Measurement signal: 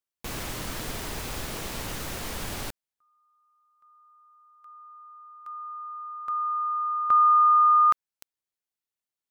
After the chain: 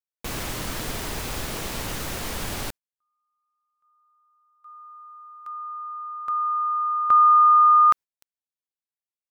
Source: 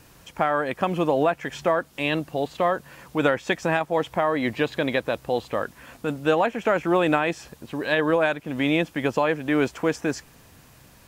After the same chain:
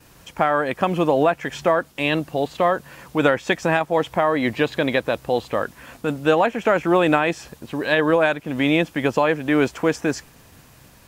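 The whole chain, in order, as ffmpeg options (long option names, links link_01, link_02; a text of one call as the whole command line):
ffmpeg -i in.wav -af "agate=range=-14dB:threshold=-51dB:ratio=3:release=113:detection=peak,volume=3.5dB" out.wav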